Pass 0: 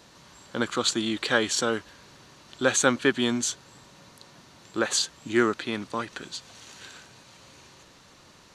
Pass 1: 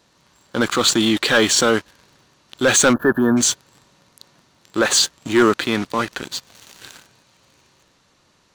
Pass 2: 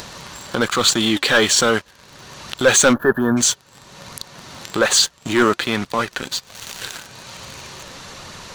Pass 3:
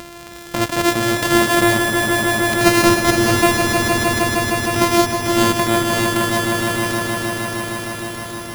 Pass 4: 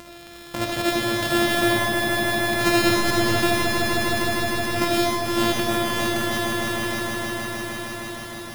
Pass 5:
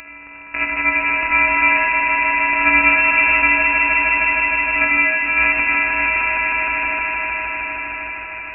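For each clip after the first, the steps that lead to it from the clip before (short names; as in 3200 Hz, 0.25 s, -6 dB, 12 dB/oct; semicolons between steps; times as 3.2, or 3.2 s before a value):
sample leveller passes 3; transient shaper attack -3 dB, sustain +2 dB; spectral gain 2.93–3.37, 1800–11000 Hz -28 dB
bell 300 Hz -6 dB 0.49 oct; upward compressor, threshold -19 dBFS; flange 1.2 Hz, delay 0.4 ms, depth 3.6 ms, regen +76%; gain +5.5 dB
sample sorter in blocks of 128 samples; on a send: swelling echo 0.155 s, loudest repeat 5, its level -6.5 dB
reverb RT60 0.55 s, pre-delay 30 ms, DRR 0.5 dB; gain -8 dB
inverted band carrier 2700 Hz; gain +5.5 dB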